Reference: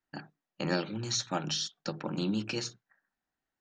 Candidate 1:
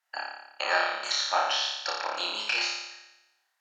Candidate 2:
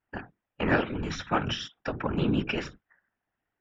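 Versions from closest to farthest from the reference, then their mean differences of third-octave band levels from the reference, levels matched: 2, 1; 5.0, 13.5 decibels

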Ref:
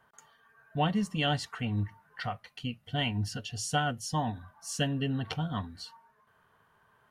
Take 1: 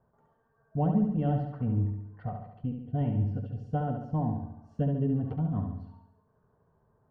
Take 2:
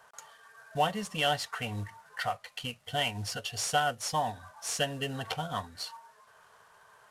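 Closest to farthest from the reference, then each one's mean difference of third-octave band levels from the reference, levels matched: 2, 1; 8.0, 11.0 decibels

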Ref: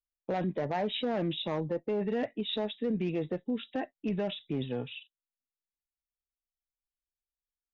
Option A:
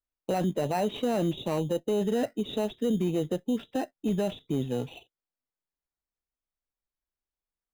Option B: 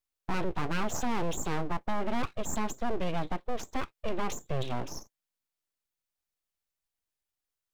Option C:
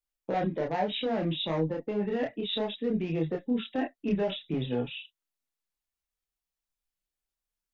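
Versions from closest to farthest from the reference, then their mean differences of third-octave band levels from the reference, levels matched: C, A, B; 2.5, 7.0, 13.0 decibels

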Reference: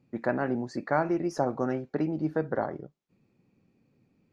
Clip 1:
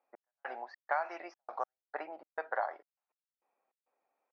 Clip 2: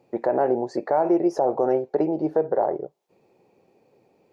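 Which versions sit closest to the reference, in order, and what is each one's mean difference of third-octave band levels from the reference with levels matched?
2, 1; 5.5, 14.0 decibels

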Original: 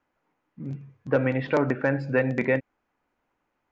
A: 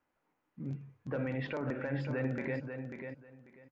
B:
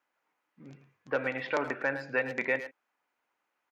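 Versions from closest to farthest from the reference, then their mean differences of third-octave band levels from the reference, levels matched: A, B; 4.0, 5.5 decibels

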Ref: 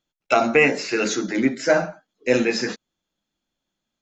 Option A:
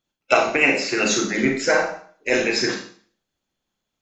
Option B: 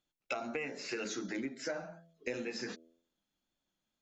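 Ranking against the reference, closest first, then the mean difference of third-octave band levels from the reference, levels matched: B, A; 3.5, 4.5 decibels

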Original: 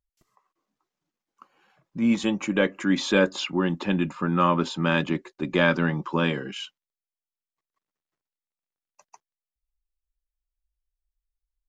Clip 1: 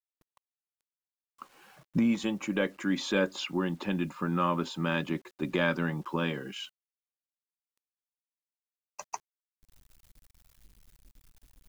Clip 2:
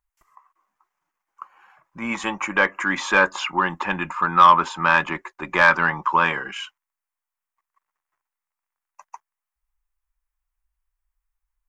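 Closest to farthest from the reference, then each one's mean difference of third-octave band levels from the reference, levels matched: 1, 2; 3.5, 5.5 decibels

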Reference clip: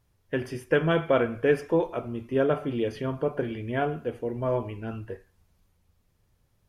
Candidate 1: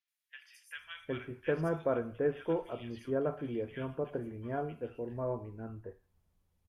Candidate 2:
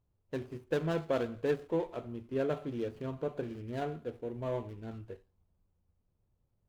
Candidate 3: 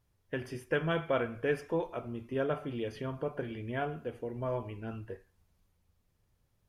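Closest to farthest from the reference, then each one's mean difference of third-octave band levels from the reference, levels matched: 3, 2, 1; 1.5, 3.0, 8.0 decibels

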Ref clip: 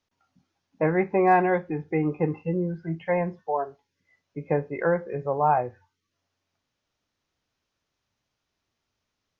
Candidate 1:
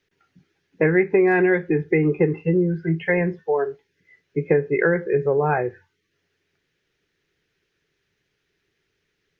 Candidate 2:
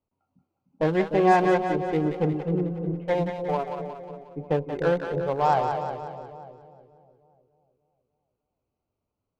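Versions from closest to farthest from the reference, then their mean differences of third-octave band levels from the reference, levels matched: 1, 2; 2.5, 7.5 decibels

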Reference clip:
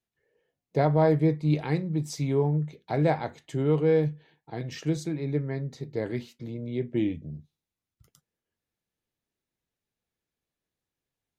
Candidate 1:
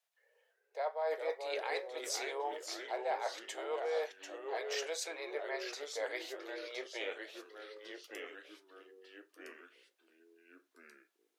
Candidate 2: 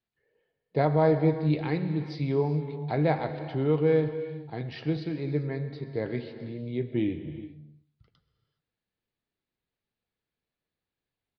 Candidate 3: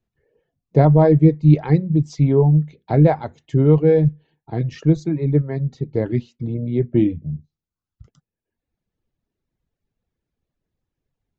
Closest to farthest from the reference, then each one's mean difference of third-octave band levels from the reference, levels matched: 2, 3, 1; 4.0, 5.5, 17.5 decibels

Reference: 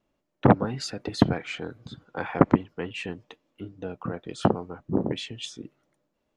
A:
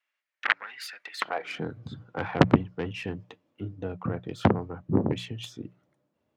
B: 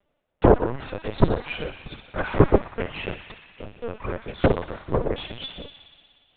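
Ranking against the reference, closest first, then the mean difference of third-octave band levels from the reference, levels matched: A, B; 5.5, 7.0 decibels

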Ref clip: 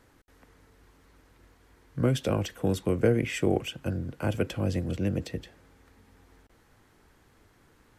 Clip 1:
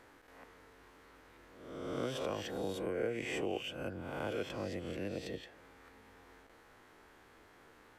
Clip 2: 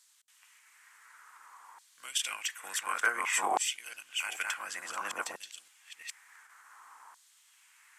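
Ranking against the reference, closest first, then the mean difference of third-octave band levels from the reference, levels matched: 1, 2; 8.5, 16.5 decibels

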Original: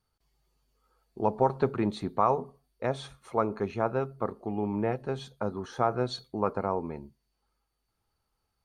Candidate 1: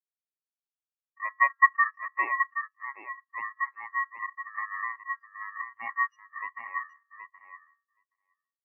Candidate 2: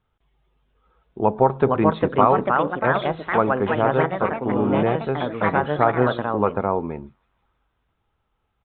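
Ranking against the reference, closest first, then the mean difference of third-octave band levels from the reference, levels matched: 2, 1; 7.0, 19.0 decibels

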